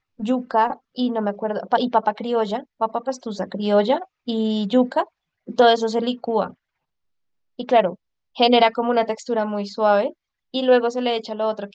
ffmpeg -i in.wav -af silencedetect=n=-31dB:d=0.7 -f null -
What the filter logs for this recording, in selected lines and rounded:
silence_start: 6.50
silence_end: 7.59 | silence_duration: 1.09